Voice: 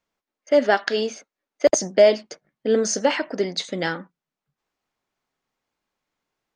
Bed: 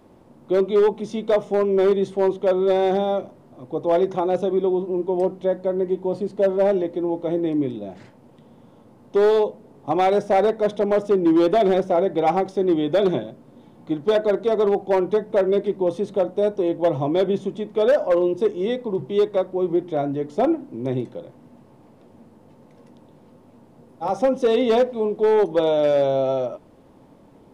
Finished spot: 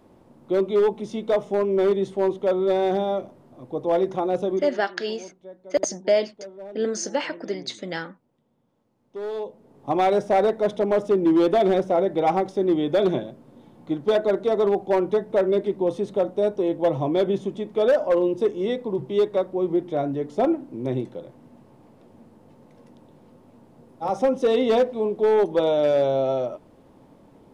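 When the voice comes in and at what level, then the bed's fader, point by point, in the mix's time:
4.10 s, -5.5 dB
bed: 4.55 s -2.5 dB
4.76 s -20.5 dB
8.94 s -20.5 dB
9.91 s -1.5 dB

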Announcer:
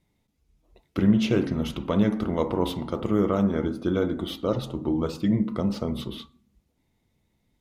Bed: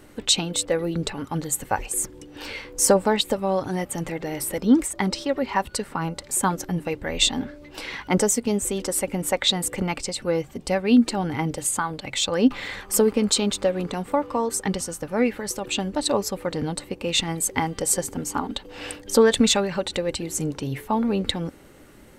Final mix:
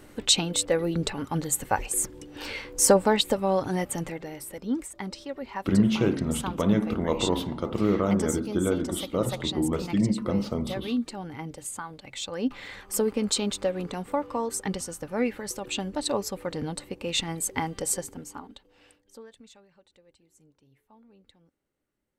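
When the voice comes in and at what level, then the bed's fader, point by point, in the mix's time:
4.70 s, -1.0 dB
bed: 3.92 s -1 dB
4.43 s -11.5 dB
12.09 s -11.5 dB
13.32 s -5 dB
17.88 s -5 dB
19.41 s -34 dB

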